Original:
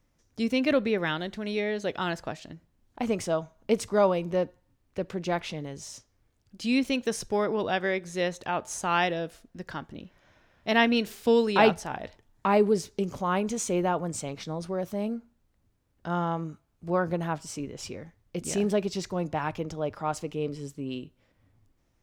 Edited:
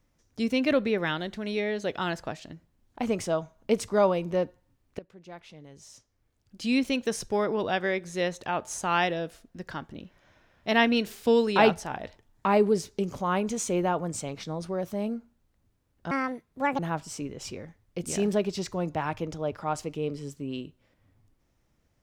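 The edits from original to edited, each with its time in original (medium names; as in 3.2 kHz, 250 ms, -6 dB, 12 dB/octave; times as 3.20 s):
4.99–6.62 s: fade in quadratic, from -18.5 dB
16.11–17.17 s: speed 156%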